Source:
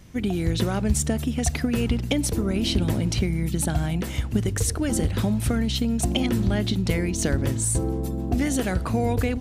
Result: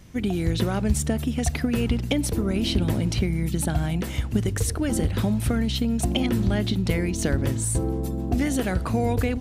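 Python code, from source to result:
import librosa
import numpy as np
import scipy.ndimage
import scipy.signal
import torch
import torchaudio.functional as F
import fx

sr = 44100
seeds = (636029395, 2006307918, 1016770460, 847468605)

y = fx.dynamic_eq(x, sr, hz=6800.0, q=1.1, threshold_db=-42.0, ratio=4.0, max_db=-4)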